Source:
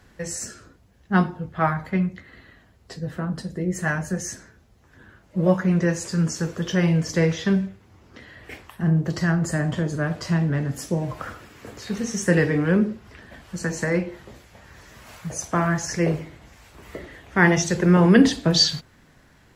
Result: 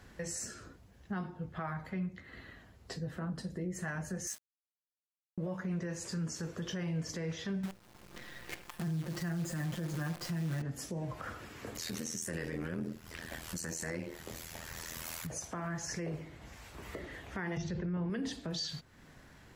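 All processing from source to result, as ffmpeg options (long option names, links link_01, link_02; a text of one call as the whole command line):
ffmpeg -i in.wav -filter_complex "[0:a]asettb=1/sr,asplit=3[link_01][link_02][link_03];[link_01]atrim=end=4.274[link_04];[link_02]atrim=start=4.27:end=5.38,asetpts=PTS-STARTPTS,afade=type=in:duration=0.004:curve=qsin,afade=type=out:start_time=1.106:duration=0.004:curve=qsin,highpass=890,aemphasis=mode=production:type=50fm,aeval=exprs='val(0)*gte(abs(val(0)),0.0188)':channel_layout=same[link_05];[link_03]atrim=start=5.376[link_06];[link_04][link_05]acrossfade=duration=0.004:curve1=hsin:curve2=qsin[link_07];[link_07][link_06]acrossfade=duration=0.004:curve1=qsin:curve2=hsin,asettb=1/sr,asplit=3[link_08][link_09][link_10];[link_08]atrim=end=7.634[link_11];[link_09]atrim=start=7.63:end=10.62,asetpts=PTS-STARTPTS,afade=type=in:duration=0.004:curve=qsin,afade=type=out:start_time=2.986:duration=0.004:curve=qsin,aecho=1:1:5.7:0.96,atrim=end_sample=131859,acrusher=bits=6:dc=4:mix=0:aa=0.000001[link_12];[link_10]atrim=start=10.616[link_13];[link_11][link_12]acrossfade=duration=0.004:curve1=hsin:curve2=qsin[link_14];[link_14][link_13]acrossfade=duration=0.004:curve1=qsin:curve2=hsin,asettb=1/sr,asplit=3[link_15][link_16][link_17];[link_15]atrim=end=11.754[link_18];[link_16]atrim=start=11.75:end=15.27,asetpts=PTS-STARTPTS,afade=type=in:duration=0.004:curve=qsin,afade=type=out:start_time=3.516:duration=0.004:curve=qsin,aemphasis=mode=production:type=75kf,acontrast=73,tremolo=f=82:d=0.889[link_19];[link_17]atrim=start=15.266[link_20];[link_18][link_19]acrossfade=duration=0.004:curve1=hsin:curve2=qsin[link_21];[link_21][link_20]acrossfade=duration=0.004:curve1=qsin:curve2=hsin,asettb=1/sr,asplit=3[link_22][link_23][link_24];[link_22]atrim=end=17.574[link_25];[link_23]atrim=start=17.57:end=18.1,asetpts=PTS-STARTPTS,afade=type=in:duration=0.004:curve=qsin,afade=type=out:start_time=0.526:duration=0.004:curve=qsin,lowpass=frequency=4900:width=0.5412,lowpass=frequency=4900:width=1.3066,equalizer=frequency=66:width=0.36:gain=14[link_26];[link_24]atrim=start=18.096[link_27];[link_25][link_26]acrossfade=duration=0.004:curve1=hsin:curve2=qsin[link_28];[link_28][link_27]acrossfade=duration=0.004:curve1=qsin:curve2=hsin,acompressor=threshold=-39dB:ratio=2,alimiter=level_in=3.5dB:limit=-24dB:level=0:latency=1:release=35,volume=-3.5dB,volume=-2dB" out.wav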